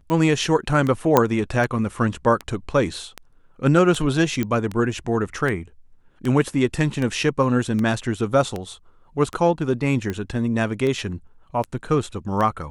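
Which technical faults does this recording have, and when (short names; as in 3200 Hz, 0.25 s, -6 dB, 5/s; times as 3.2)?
tick 78 rpm -14 dBFS
1.17 pop -2 dBFS
4.43 pop -11 dBFS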